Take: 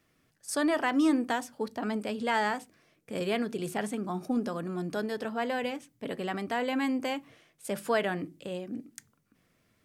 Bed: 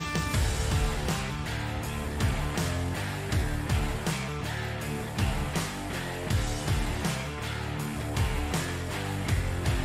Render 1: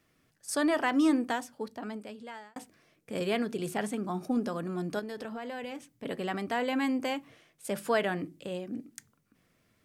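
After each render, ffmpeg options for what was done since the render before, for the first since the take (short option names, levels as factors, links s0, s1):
-filter_complex "[0:a]asettb=1/sr,asplit=3[s0][s1][s2];[s0]atrim=end=4.994[s3];[s1]atrim=start=4.99:end=6.05,asetpts=PTS-STARTPTS,afade=t=in:d=0.004:c=qsin,afade=t=out:st=1.056:d=0.004:c=qsin,acompressor=threshold=0.0178:ratio=6:attack=3.2:release=140:knee=1:detection=peak[s4];[s2]atrim=start=6.046[s5];[s3][s4]acrossfade=d=0.004:c1=hsin:c2=qsin[s6];[s6][s5]acrossfade=d=0.004:c1=qsin:c2=hsin,asplit=2[s7][s8];[s7]atrim=end=2.56,asetpts=PTS-STARTPTS,afade=t=out:st=1.1:d=1.46[s9];[s8]atrim=start=2.56,asetpts=PTS-STARTPTS,afade=t=in:d=0.004:c=hsin[s10];[s9][s10]concat=n=2:v=0:a=1"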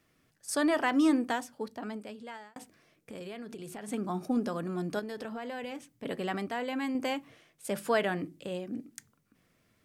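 -filter_complex "[0:a]asplit=3[s0][s1][s2];[s0]afade=t=out:st=2.36:d=0.02[s3];[s1]acompressor=threshold=0.01:ratio=5:attack=3.2:release=140:knee=1:detection=peak,afade=t=in:st=2.36:d=0.02,afade=t=out:st=3.87:d=0.02[s4];[s2]afade=t=in:st=3.87:d=0.02[s5];[s3][s4][s5]amix=inputs=3:normalize=0,asplit=3[s6][s7][s8];[s6]atrim=end=6.482[s9];[s7]atrim=start=6.478:end=6.952,asetpts=PTS-STARTPTS,volume=0.631[s10];[s8]atrim=start=6.948[s11];[s9][s10]acrossfade=d=0.004:c1=hsin:c2=hsin[s12];[s12][s11]acrossfade=d=0.004:c1=hsin:c2=hsin"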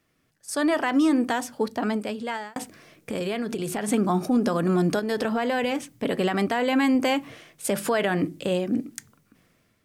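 -af "dynaudnorm=f=270:g=7:m=5.01,alimiter=limit=0.2:level=0:latency=1:release=132"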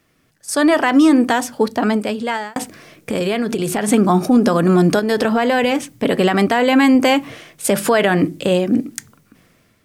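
-af "volume=2.82"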